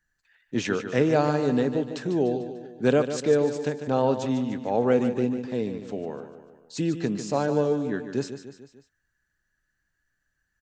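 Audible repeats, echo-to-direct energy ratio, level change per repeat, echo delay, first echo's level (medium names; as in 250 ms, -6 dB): 4, -8.5 dB, -5.5 dB, 148 ms, -10.0 dB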